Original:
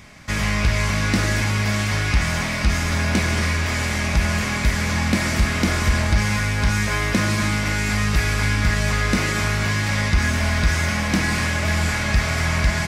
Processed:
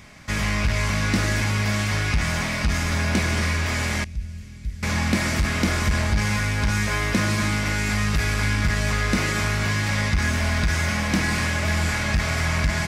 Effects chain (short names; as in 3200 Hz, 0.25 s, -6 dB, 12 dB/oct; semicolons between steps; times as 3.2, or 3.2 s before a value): 4.04–4.83 passive tone stack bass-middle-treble 10-0-1; core saturation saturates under 94 Hz; gain -1.5 dB